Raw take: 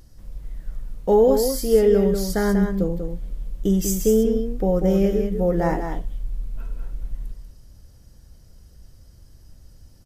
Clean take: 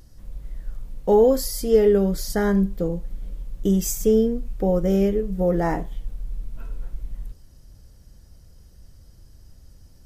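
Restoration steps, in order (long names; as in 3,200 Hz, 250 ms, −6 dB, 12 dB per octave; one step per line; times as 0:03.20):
echo removal 191 ms −6.5 dB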